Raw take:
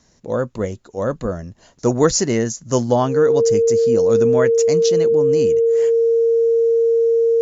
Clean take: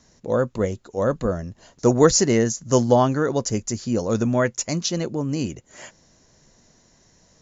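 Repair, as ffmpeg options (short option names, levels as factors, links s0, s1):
-af "bandreject=f=460:w=30"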